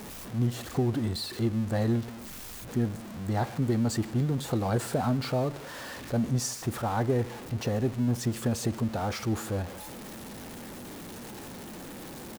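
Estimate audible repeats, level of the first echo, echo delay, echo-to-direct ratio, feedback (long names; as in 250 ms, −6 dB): 1, −23.5 dB, 148 ms, −23.5 dB, repeats not evenly spaced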